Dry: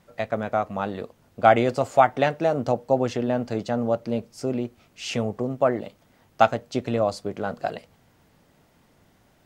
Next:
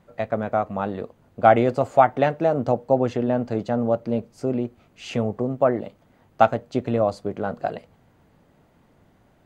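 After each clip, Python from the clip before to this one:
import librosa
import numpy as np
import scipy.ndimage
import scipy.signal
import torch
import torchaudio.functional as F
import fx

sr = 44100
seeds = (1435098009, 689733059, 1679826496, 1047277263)

y = fx.high_shelf(x, sr, hz=2300.0, db=-10.5)
y = fx.notch(y, sr, hz=5400.0, q=12.0)
y = F.gain(torch.from_numpy(y), 2.5).numpy()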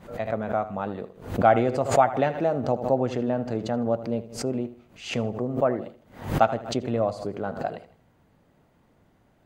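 y = fx.echo_feedback(x, sr, ms=79, feedback_pct=35, wet_db=-14.5)
y = fx.pre_swell(y, sr, db_per_s=120.0)
y = F.gain(torch.from_numpy(y), -4.0).numpy()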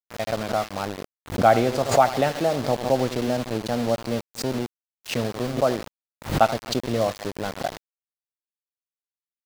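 y = np.where(np.abs(x) >= 10.0 ** (-30.5 / 20.0), x, 0.0)
y = fx.dynamic_eq(y, sr, hz=4500.0, q=1.2, threshold_db=-49.0, ratio=4.0, max_db=6)
y = F.gain(torch.from_numpy(y), 1.5).numpy()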